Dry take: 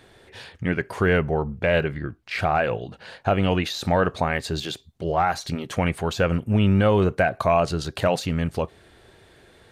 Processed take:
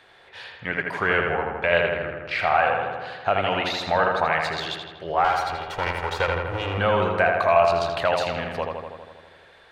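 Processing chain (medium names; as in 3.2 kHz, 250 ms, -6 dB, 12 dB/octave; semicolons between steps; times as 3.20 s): 5.24–6.78 s: comb filter that takes the minimum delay 2.1 ms; three-band isolator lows -15 dB, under 580 Hz, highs -13 dB, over 4.6 kHz; filtered feedback delay 81 ms, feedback 71%, low-pass 3.6 kHz, level -3.5 dB; trim +2.5 dB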